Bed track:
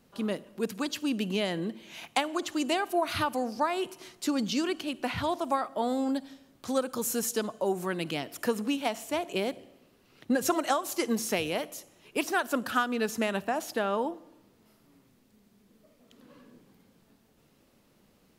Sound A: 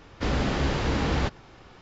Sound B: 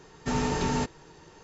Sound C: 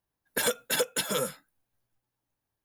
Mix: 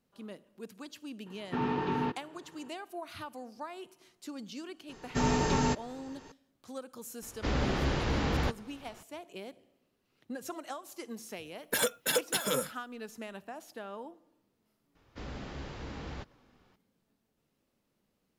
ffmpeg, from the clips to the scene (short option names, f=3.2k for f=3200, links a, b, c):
-filter_complex "[2:a]asplit=2[a][b];[1:a]asplit=2[c][d];[0:a]volume=-14dB[e];[a]highpass=140,equalizer=f=340:t=q:w=4:g=5,equalizer=f=600:t=q:w=4:g=-9,equalizer=f=1k:t=q:w=4:g=4,equalizer=f=2.1k:t=q:w=4:g=-4,lowpass=f=3.2k:w=0.5412,lowpass=f=3.2k:w=1.3066,atrim=end=1.43,asetpts=PTS-STARTPTS,volume=-3.5dB,afade=t=in:d=0.004:c=hsin,afade=t=out:st=1.426:d=0.004:c=hsin,adelay=1260[f];[b]atrim=end=1.43,asetpts=PTS-STARTPTS,volume=-0.5dB,afade=t=in:d=0.004:c=hsin,afade=t=out:st=1.426:d=0.004:c=hsin,adelay=215649S[g];[c]atrim=end=1.81,asetpts=PTS-STARTPTS,volume=-4.5dB,afade=t=in:d=0.004:c=hsin,afade=t=out:st=1.806:d=0.004:c=hsin,adelay=318402S[h];[3:a]atrim=end=2.64,asetpts=PTS-STARTPTS,volume=-2dB,afade=t=in:d=0.004:c=hsin,afade=t=out:st=2.636:d=0.004:c=hsin,adelay=11360[i];[d]atrim=end=1.81,asetpts=PTS-STARTPTS,volume=-16.5dB,afade=t=in:d=0.004:c=hsin,afade=t=out:st=1.806:d=0.004:c=hsin,adelay=14950[j];[e][f][g][h][i][j]amix=inputs=6:normalize=0"